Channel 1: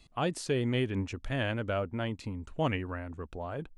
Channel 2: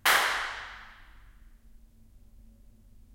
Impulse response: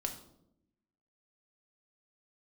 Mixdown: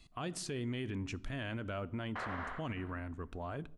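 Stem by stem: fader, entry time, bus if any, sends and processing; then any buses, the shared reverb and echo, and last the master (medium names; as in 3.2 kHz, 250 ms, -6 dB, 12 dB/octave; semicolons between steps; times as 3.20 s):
-3.0 dB, 0.00 s, send -13.5 dB, no echo send, peaking EQ 520 Hz -7 dB 0.39 oct
-7.0 dB, 2.10 s, no send, echo send -4.5 dB, expander -47 dBFS; low-pass 1.1 kHz 12 dB/octave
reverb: on, RT60 0.80 s, pre-delay 4 ms
echo: delay 71 ms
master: band-stop 830 Hz, Q 12; peak limiter -31 dBFS, peak gain reduction 11 dB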